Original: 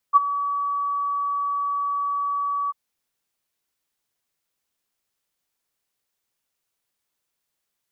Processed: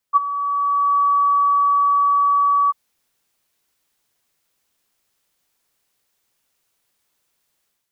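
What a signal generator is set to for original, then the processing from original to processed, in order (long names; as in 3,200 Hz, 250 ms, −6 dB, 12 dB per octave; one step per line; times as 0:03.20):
note with an ADSR envelope sine 1,140 Hz, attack 33 ms, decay 22 ms, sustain −14.5 dB, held 2.57 s, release 24 ms −7.5 dBFS
automatic gain control gain up to 9 dB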